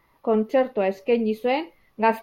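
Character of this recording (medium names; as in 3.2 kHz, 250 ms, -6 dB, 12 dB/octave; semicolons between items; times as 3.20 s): noise floor -64 dBFS; spectral tilt -4.0 dB/octave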